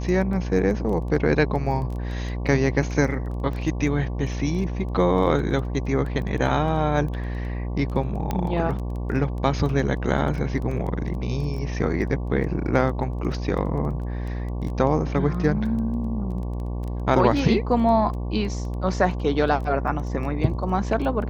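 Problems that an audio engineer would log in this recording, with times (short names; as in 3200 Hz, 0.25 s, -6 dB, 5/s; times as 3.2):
buzz 60 Hz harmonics 19 -28 dBFS
crackle 12/s -31 dBFS
8.31 pop -12 dBFS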